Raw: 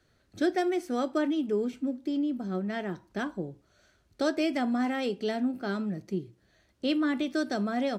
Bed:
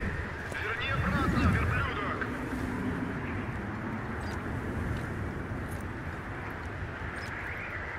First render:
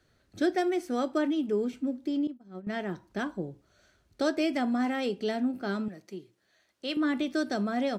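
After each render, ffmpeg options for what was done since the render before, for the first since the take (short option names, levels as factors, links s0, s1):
-filter_complex "[0:a]asettb=1/sr,asplit=3[s0][s1][s2];[s0]atrim=end=2.274[s3];[s1]atrim=start=2.27:end=2.67,asetpts=PTS-STARTPTS,afade=t=in:d=0.004:c=qsin,afade=t=out:st=0.396:d=0.004:c=qsin,agate=range=0.0224:threshold=0.0708:ratio=3:release=100:detection=peak[s4];[s2]atrim=start=2.666[s5];[s3][s4]acrossfade=d=0.004:c1=hsin:c2=qsin[s6];[s6][s5]acrossfade=d=0.004:c1=qsin:c2=hsin,asettb=1/sr,asplit=3[s7][s8][s9];[s7]atrim=end=5.884[s10];[s8]atrim=start=5.88:end=6.97,asetpts=PTS-STARTPTS,afade=t=in:d=0.004:c=qsin,afade=t=out:st=1.086:d=0.004:c=qsin,highpass=f=760:p=1[s11];[s9]atrim=start=6.966[s12];[s10][s11]acrossfade=d=0.004:c1=hsin:c2=qsin[s13];[s13][s12]acrossfade=d=0.004:c1=qsin:c2=hsin"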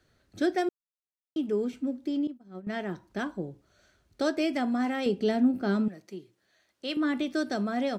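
-filter_complex "[0:a]asettb=1/sr,asplit=3[s0][s1][s2];[s0]atrim=end=5.064[s3];[s1]atrim=start=5.06:end=5.88,asetpts=PTS-STARTPTS,afade=t=in:d=0.004:c=qsin,afade=t=out:st=0.816:d=0.004:c=qsin,lowshelf=f=460:g=7.5[s4];[s2]atrim=start=5.876[s5];[s3][s4]acrossfade=d=0.004:c1=hsin:c2=qsin[s6];[s6][s5]acrossfade=d=0.004:c1=qsin:c2=hsin,asplit=3[s7][s8][s9];[s7]atrim=end=0.69,asetpts=PTS-STARTPTS,afade=t=out:st=0.686:d=0.004:c=hsin[s10];[s8]atrim=start=0.69:end=1.36,asetpts=PTS-STARTPTS,volume=0[s11];[s9]atrim=start=1.36,asetpts=PTS-STARTPTS,afade=t=in:d=0.004:c=hsin[s12];[s10][s11][s12]concat=n=3:v=0:a=1"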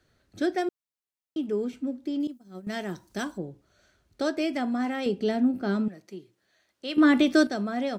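-filter_complex "[0:a]asettb=1/sr,asplit=3[s0][s1][s2];[s0]atrim=end=2.204[s3];[s1]atrim=start=2.2:end=3.38,asetpts=PTS-STARTPTS,afade=t=in:d=0.004:c=qsin,afade=t=out:st=1.176:d=0.004:c=qsin,bass=f=250:g=1,treble=f=4000:g=14[s4];[s2]atrim=start=3.376[s5];[s3][s4]acrossfade=d=0.004:c1=hsin:c2=qsin[s6];[s6][s5]acrossfade=d=0.004:c1=qsin:c2=hsin,asplit=3[s7][s8][s9];[s7]atrim=end=6.982[s10];[s8]atrim=start=6.978:end=7.472,asetpts=PTS-STARTPTS,volume=2.82[s11];[s9]atrim=start=7.468[s12];[s10][s11]acrossfade=d=0.004:c1=hsin:c2=hsin[s13];[s13][s12]acrossfade=d=0.004:c1=hsin:c2=hsin"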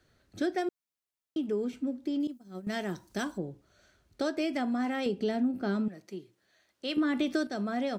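-af "alimiter=limit=0.178:level=0:latency=1:release=396,acompressor=threshold=0.0355:ratio=2"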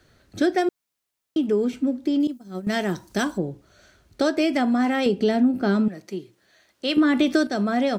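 -af "volume=2.99"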